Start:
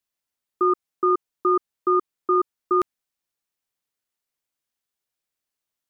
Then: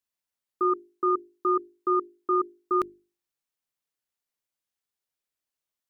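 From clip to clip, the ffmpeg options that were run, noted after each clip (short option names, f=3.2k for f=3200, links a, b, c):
-af "bandreject=f=50:t=h:w=6,bandreject=f=100:t=h:w=6,bandreject=f=150:t=h:w=6,bandreject=f=200:t=h:w=6,bandreject=f=250:t=h:w=6,bandreject=f=300:t=h:w=6,bandreject=f=350:t=h:w=6,bandreject=f=400:t=h:w=6,volume=-4dB"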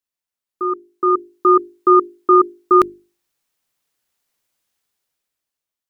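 -af "dynaudnorm=f=250:g=9:m=15dB"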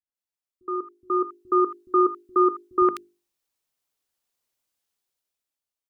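-filter_complex "[0:a]acrossover=split=160|1800[a][b][c];[b]adelay=70[d];[c]adelay=150[e];[a][d][e]amix=inputs=3:normalize=0,volume=-6.5dB"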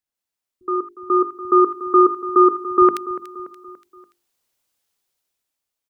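-af "aecho=1:1:288|576|864|1152:0.178|0.0854|0.041|0.0197,volume=6.5dB"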